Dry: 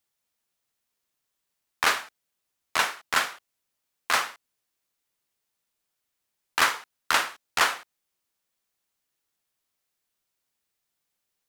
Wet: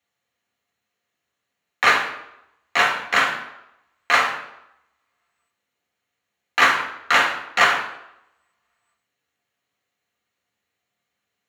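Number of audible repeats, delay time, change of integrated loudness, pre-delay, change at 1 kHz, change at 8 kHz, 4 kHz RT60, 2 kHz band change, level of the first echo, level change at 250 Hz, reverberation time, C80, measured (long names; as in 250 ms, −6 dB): no echo audible, no echo audible, +6.5 dB, 3 ms, +7.0 dB, −2.0 dB, 0.65 s, +8.5 dB, no echo audible, +8.0 dB, 0.85 s, 10.5 dB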